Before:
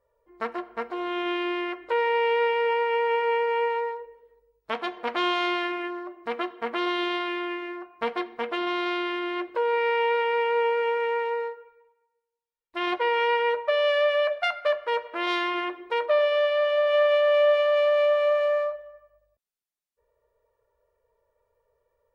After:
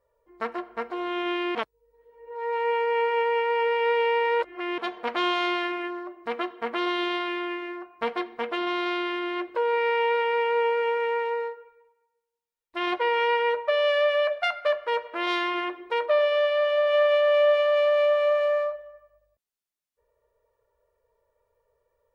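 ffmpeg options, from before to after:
-filter_complex "[0:a]asplit=3[a][b][c];[a]atrim=end=1.552[d];[b]atrim=start=1.548:end=4.782,asetpts=PTS-STARTPTS,areverse[e];[c]atrim=start=4.778[f];[d][e]acrossfade=d=0.004:c1=hsin:c2=hsin[g];[g][f]acrossfade=d=0.004:c1=hsin:c2=hsin"

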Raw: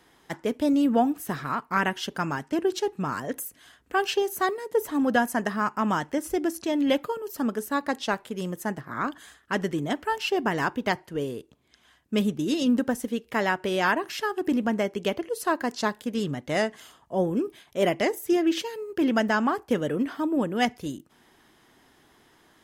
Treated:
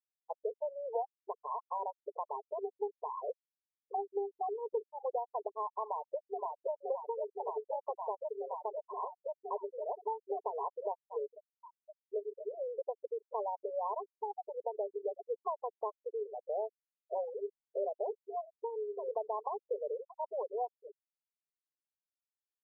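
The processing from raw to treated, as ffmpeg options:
-filter_complex "[0:a]asplit=2[a][b];[b]afade=t=in:st=5.86:d=0.01,afade=t=out:st=6.72:d=0.01,aecho=0:1:520|1040|1560|2080|2600|3120|3640|4160|4680|5200|5720|6240:0.668344|0.568092|0.482878|0.410447|0.34888|0.296548|0.252066|0.214256|0.182117|0.1548|0.13158|0.111843[c];[a][c]amix=inputs=2:normalize=0,asettb=1/sr,asplit=3[d][e][f];[d]atrim=end=11.264[g];[e]atrim=start=11.26:end=12.14,asetpts=PTS-STARTPTS,afade=t=in:d=0.004:c=qsin,afade=t=out:st=0.876:d=0.004:c=qsin,highpass=970[h];[f]atrim=start=12.136[i];[g][h]acrossfade=d=0.004:c1=hsin:c2=qsin[j];[j][i]acrossfade=d=0.004:c1=qsin:c2=hsin,asettb=1/sr,asplit=3[k][l][m];[k]atrim=end=14.204[n];[l]atrim=start=14.2:end=14.65,asetpts=PTS-STARTPTS,afade=t=in:d=0.004:c=qsin,afade=t=out:st=0.446:d=0.004:c=qsin,highpass=f=510:w=0.5412,highpass=f=510:w=1.3066[o];[m]atrim=start=14.646[p];[n][o]acrossfade=d=0.004:c1=hsin:c2=qsin[q];[q][p]acrossfade=d=0.004:c1=qsin:c2=hsin,afftfilt=real='re*between(b*sr/4096,390,1100)':imag='im*between(b*sr/4096,390,1100)':win_size=4096:overlap=0.75,acompressor=threshold=-37dB:ratio=3,afftfilt=real='re*gte(hypot(re,im),0.0316)':imag='im*gte(hypot(re,im),0.0316)':win_size=1024:overlap=0.75,volume=1dB"

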